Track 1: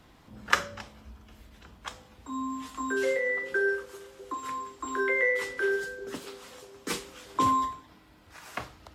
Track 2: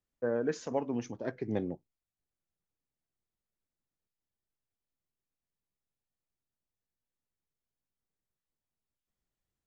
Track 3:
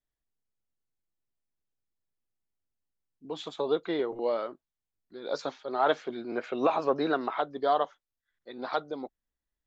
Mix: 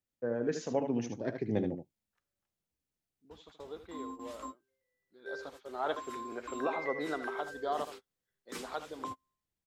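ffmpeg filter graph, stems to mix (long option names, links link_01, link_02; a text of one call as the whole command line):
ffmpeg -i stem1.wav -i stem2.wav -i stem3.wav -filter_complex "[0:a]acompressor=threshold=-32dB:ratio=5,adelay=1650,volume=-7dB[link_01];[1:a]highpass=58,equalizer=frequency=1100:width=1.4:gain=-5,dynaudnorm=framelen=110:gausssize=9:maxgain=4dB,volume=-2.5dB,asplit=2[link_02][link_03];[link_03]volume=-7.5dB[link_04];[2:a]volume=-9dB,afade=type=in:start_time=5.11:duration=0.79:silence=0.375837,asplit=3[link_05][link_06][link_07];[link_06]volume=-11.5dB[link_08];[link_07]apad=whole_len=467271[link_09];[link_01][link_09]sidechaingate=range=-43dB:threshold=-53dB:ratio=16:detection=peak[link_10];[link_04][link_08]amix=inputs=2:normalize=0,aecho=0:1:76:1[link_11];[link_10][link_02][link_05][link_11]amix=inputs=4:normalize=0" out.wav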